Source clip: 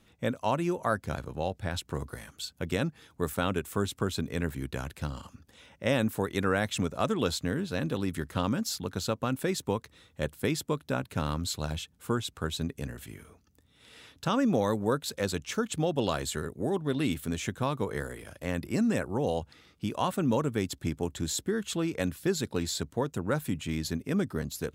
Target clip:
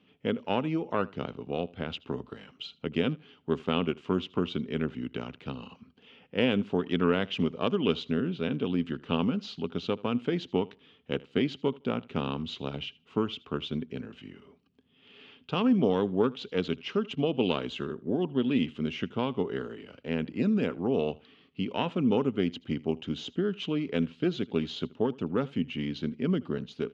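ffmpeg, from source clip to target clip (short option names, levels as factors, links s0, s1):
-af "aeval=exprs='0.211*(cos(1*acos(clip(val(0)/0.211,-1,1)))-cos(1*PI/2))+0.0596*(cos(2*acos(clip(val(0)/0.211,-1,1)))-cos(2*PI/2))':c=same,highpass=140,equalizer=f=190:t=q:w=4:g=5,equalizer=f=280:t=q:w=4:g=9,equalizer=f=460:t=q:w=4:g=7,equalizer=f=1900:t=q:w=4:g=-3,equalizer=f=3100:t=q:w=4:g=10,lowpass=f=4400:w=0.5412,lowpass=f=4400:w=1.3066,aecho=1:1:72|144:0.075|0.0142,asetrate=40517,aresample=44100,volume=0.631"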